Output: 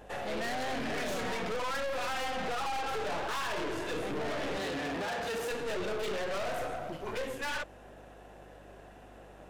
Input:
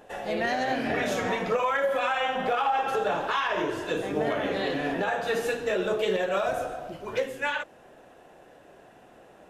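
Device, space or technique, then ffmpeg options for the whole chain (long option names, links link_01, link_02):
valve amplifier with mains hum: -filter_complex "[0:a]aeval=exprs='(tanh(63.1*val(0)+0.65)-tanh(0.65))/63.1':channel_layout=same,aeval=exprs='val(0)+0.00112*(sin(2*PI*50*n/s)+sin(2*PI*2*50*n/s)/2+sin(2*PI*3*50*n/s)/3+sin(2*PI*4*50*n/s)/4+sin(2*PI*5*50*n/s)/5)':channel_layout=same,asettb=1/sr,asplit=3[link_01][link_02][link_03];[link_01]atrim=end=4.574[link_04];[link_02]atrim=start=4.57:end=5.51,asetpts=PTS-STARTPTS,afade=type=in:duration=0.004:curve=qsin,afade=type=out:start_time=0.936:duration=0.004:curve=qsin,highpass=47[link_05];[link_03]atrim=start=5.506[link_06];[link_04][link_05]acrossfade=duration=0.004:curve1=hsin:curve2=qsin[link_07];[link_07][link_06]acrossfade=duration=0.004:curve1=qsin:curve2=hsin,volume=3dB"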